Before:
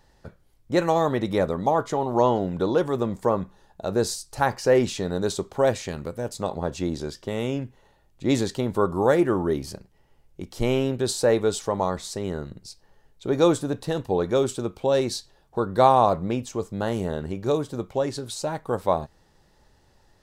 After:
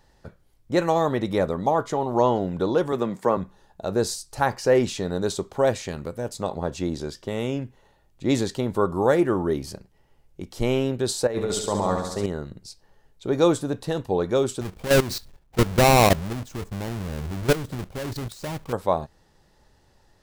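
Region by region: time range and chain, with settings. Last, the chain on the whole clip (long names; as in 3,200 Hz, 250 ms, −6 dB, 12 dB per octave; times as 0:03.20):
0:02.92–0:03.37: high-pass filter 130 Hz 24 dB per octave + parametric band 2,000 Hz +5 dB 1.4 octaves
0:11.27–0:12.26: downward expander −31 dBFS + compressor whose output falls as the input rises −25 dBFS + flutter between parallel walls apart 11.9 metres, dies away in 0.88 s
0:14.61–0:18.73: each half-wave held at its own peak + low-shelf EQ 160 Hz +9.5 dB + output level in coarse steps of 15 dB
whole clip: no processing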